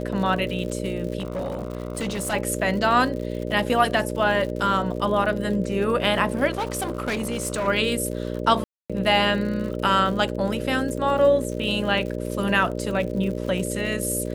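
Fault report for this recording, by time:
buzz 60 Hz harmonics 10 -29 dBFS
crackle 92 per s -32 dBFS
1.18–2.34 s: clipped -23.5 dBFS
6.50–7.68 s: clipped -22 dBFS
8.64–8.90 s: dropout 256 ms

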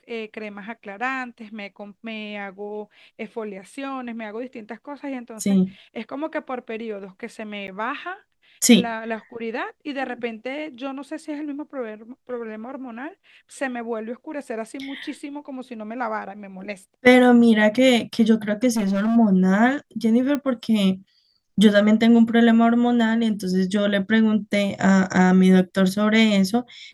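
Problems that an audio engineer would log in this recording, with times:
7.67–7.68 s: dropout 9.8 ms
18.72–19.17 s: clipped -18.5 dBFS
20.35 s: pop -12 dBFS

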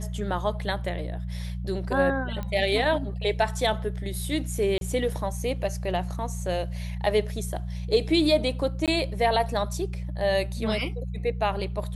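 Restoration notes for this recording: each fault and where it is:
hum 60 Hz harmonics 3 -32 dBFS
2.43 s: pop -20 dBFS
4.78–4.81 s: dropout 32 ms
8.86–8.88 s: dropout 17 ms

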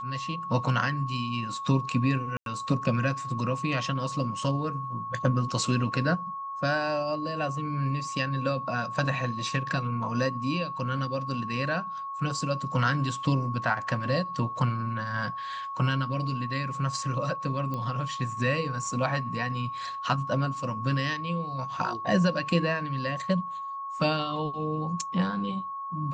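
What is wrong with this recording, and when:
whine 1.1 kHz -33 dBFS
2.37–2.46 s: dropout 92 ms
17.74 s: pop -21 dBFS

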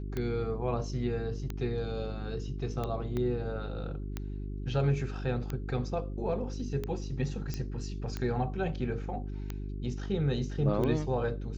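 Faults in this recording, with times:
hum 50 Hz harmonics 8 -37 dBFS
tick 45 rpm -21 dBFS
3.17 s: pop -22 dBFS
7.54 s: pop -21 dBFS

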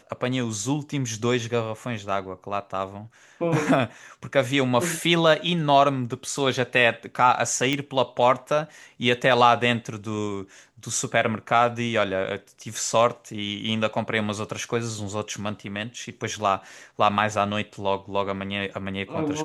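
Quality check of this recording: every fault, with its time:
7.73 s: pop -11 dBFS

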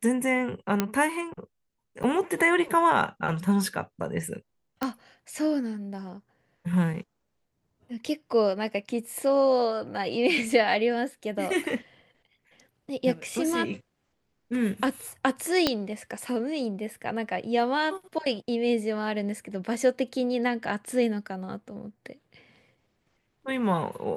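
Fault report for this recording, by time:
0.80 s: pop -9 dBFS
2.03–2.04 s: dropout 7.6 ms
4.83 s: pop -14 dBFS
15.67 s: pop -7 dBFS

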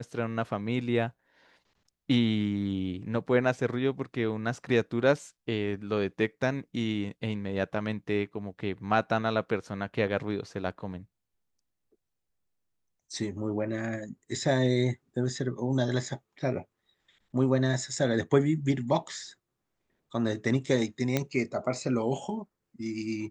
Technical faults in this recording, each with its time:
21.17 s: pop -12 dBFS

